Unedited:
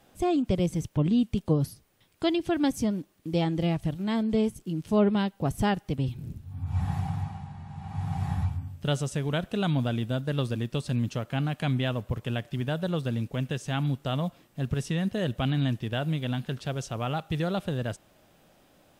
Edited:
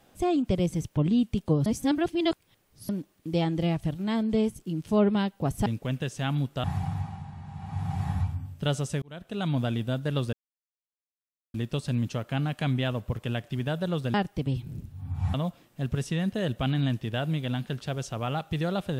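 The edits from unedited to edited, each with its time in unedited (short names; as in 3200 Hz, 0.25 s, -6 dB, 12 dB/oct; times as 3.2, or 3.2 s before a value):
1.66–2.89 reverse
5.66–6.86 swap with 13.15–14.13
9.24–9.82 fade in
10.55 insert silence 1.21 s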